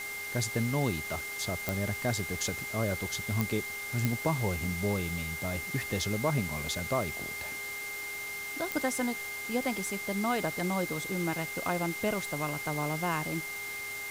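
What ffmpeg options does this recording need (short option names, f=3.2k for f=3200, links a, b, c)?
-af "adeclick=t=4,bandreject=f=404.4:t=h:w=4,bandreject=f=808.8:t=h:w=4,bandreject=f=1.2132k:t=h:w=4,bandreject=f=1.6176k:t=h:w=4,bandreject=f=2.1k:w=30,afwtdn=0.0071"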